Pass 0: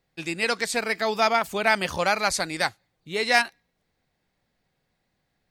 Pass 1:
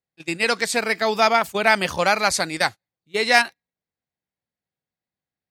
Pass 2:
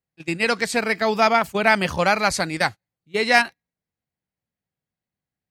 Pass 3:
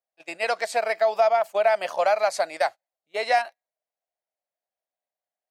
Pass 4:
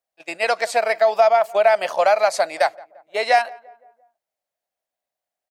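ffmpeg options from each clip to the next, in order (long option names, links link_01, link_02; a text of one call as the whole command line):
ffmpeg -i in.wav -af "agate=range=-21dB:threshold=-31dB:ratio=16:detection=peak,highpass=63,volume=4dB" out.wav
ffmpeg -i in.wav -af "bass=frequency=250:gain=6,treble=frequency=4000:gain=-4,bandreject=frequency=3600:width=19" out.wav
ffmpeg -i in.wav -af "highpass=frequency=640:width_type=q:width=6.1,acompressor=threshold=-11dB:ratio=3,volume=-7dB" out.wav
ffmpeg -i in.wav -filter_complex "[0:a]asplit=2[link_01][link_02];[link_02]adelay=172,lowpass=frequency=1300:poles=1,volume=-21.5dB,asplit=2[link_03][link_04];[link_04]adelay=172,lowpass=frequency=1300:poles=1,volume=0.53,asplit=2[link_05][link_06];[link_06]adelay=172,lowpass=frequency=1300:poles=1,volume=0.53,asplit=2[link_07][link_08];[link_08]adelay=172,lowpass=frequency=1300:poles=1,volume=0.53[link_09];[link_01][link_03][link_05][link_07][link_09]amix=inputs=5:normalize=0,volume=5dB" out.wav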